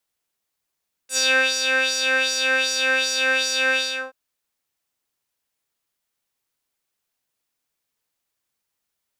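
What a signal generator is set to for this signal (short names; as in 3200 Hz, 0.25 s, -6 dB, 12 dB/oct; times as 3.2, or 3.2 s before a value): synth patch with filter wobble C5, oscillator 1 square, oscillator 2 saw, interval +12 st, oscillator 2 level -15 dB, sub -5 dB, filter bandpass, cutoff 1600 Hz, Q 2.7, filter envelope 2.5 oct, filter decay 0.08 s, attack 76 ms, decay 0.35 s, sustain -4 dB, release 0.36 s, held 2.67 s, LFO 2.6 Hz, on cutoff 0.8 oct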